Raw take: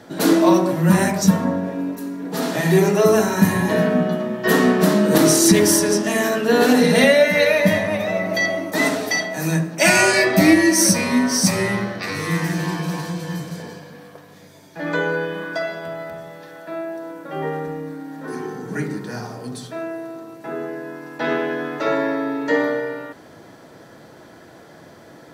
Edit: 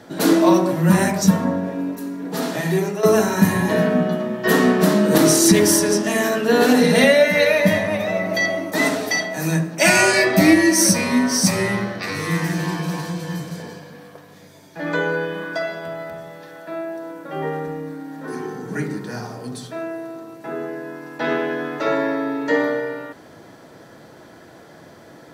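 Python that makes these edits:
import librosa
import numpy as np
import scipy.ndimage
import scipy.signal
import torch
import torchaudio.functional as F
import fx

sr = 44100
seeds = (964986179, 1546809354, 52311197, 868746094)

y = fx.edit(x, sr, fx.fade_out_to(start_s=2.33, length_s=0.7, floor_db=-10.5), tone=tone)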